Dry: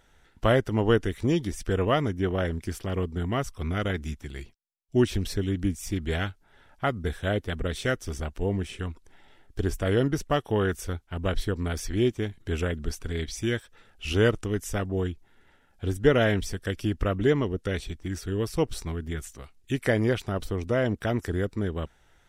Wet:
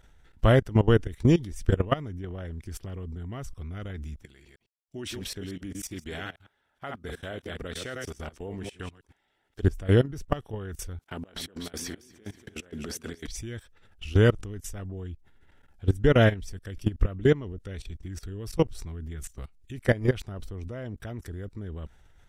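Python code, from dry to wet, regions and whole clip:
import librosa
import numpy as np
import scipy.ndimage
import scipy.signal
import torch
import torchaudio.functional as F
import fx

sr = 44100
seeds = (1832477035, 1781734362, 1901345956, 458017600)

y = fx.chain(x, sr, fx.reverse_delay(ms=106, wet_db=-7.5),
    fx.highpass(hz=460.0, slope=6), at=(4.24, 9.63))
y = fx.chain(y, sr, fx.highpass(hz=260.0, slope=12),
    fx.over_compress(threshold_db=-41.0, ratio=-1.0),
    fx.echo_feedback(ms=239, feedback_pct=33, wet_db=-8), at=(10.99, 13.27))
y = fx.low_shelf(y, sr, hz=150.0, db=10.5)
y = fx.level_steps(y, sr, step_db=19)
y = y * librosa.db_to_amplitude(2.0)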